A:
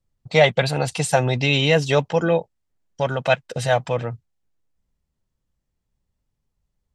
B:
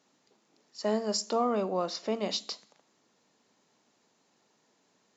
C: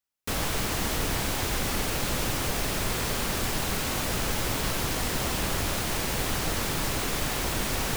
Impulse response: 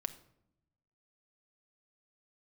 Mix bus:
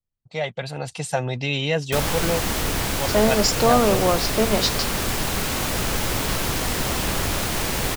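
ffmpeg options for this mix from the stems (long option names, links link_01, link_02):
-filter_complex "[0:a]volume=-13.5dB[link_01];[1:a]adelay=2300,volume=2.5dB[link_02];[2:a]adelay=1650,volume=-3.5dB[link_03];[link_01][link_02][link_03]amix=inputs=3:normalize=0,dynaudnorm=framelen=290:gausssize=5:maxgain=8dB"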